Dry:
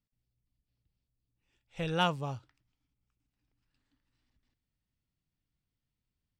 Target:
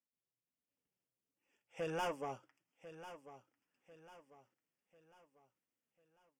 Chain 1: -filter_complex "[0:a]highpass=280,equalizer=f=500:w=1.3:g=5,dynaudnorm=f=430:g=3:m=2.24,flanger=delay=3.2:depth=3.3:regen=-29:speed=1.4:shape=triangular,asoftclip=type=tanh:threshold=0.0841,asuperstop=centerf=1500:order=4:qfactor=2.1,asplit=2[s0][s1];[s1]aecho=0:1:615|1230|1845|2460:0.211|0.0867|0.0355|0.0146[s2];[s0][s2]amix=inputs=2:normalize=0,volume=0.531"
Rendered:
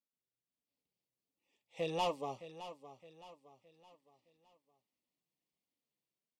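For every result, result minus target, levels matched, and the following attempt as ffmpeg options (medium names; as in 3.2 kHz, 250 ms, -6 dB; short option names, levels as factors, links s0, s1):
echo 430 ms early; 2 kHz band -6.0 dB; saturation: distortion -5 dB
-filter_complex "[0:a]highpass=280,equalizer=f=500:w=1.3:g=5,dynaudnorm=f=430:g=3:m=2.24,flanger=delay=3.2:depth=3.3:regen=-29:speed=1.4:shape=triangular,asoftclip=type=tanh:threshold=0.0841,asuperstop=centerf=1500:order=4:qfactor=2.1,asplit=2[s0][s1];[s1]aecho=0:1:1045|2090|3135|4180:0.211|0.0867|0.0355|0.0146[s2];[s0][s2]amix=inputs=2:normalize=0,volume=0.531"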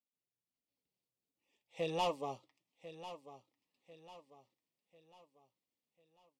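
2 kHz band -5.0 dB; saturation: distortion -5 dB
-filter_complex "[0:a]highpass=280,equalizer=f=500:w=1.3:g=5,dynaudnorm=f=430:g=3:m=2.24,flanger=delay=3.2:depth=3.3:regen=-29:speed=1.4:shape=triangular,asoftclip=type=tanh:threshold=0.0841,asuperstop=centerf=4000:order=4:qfactor=2.1,asplit=2[s0][s1];[s1]aecho=0:1:1045|2090|3135|4180:0.211|0.0867|0.0355|0.0146[s2];[s0][s2]amix=inputs=2:normalize=0,volume=0.531"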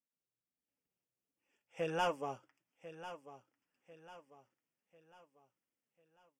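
saturation: distortion -5 dB
-filter_complex "[0:a]highpass=280,equalizer=f=500:w=1.3:g=5,dynaudnorm=f=430:g=3:m=2.24,flanger=delay=3.2:depth=3.3:regen=-29:speed=1.4:shape=triangular,asoftclip=type=tanh:threshold=0.0355,asuperstop=centerf=4000:order=4:qfactor=2.1,asplit=2[s0][s1];[s1]aecho=0:1:1045|2090|3135|4180:0.211|0.0867|0.0355|0.0146[s2];[s0][s2]amix=inputs=2:normalize=0,volume=0.531"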